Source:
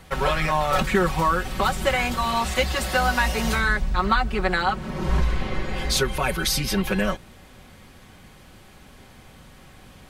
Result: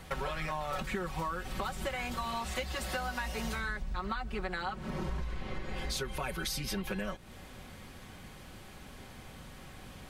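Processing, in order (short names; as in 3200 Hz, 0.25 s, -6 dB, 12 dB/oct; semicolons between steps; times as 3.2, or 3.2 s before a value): compressor 6:1, threshold -32 dBFS, peak gain reduction 16 dB; gain -1.5 dB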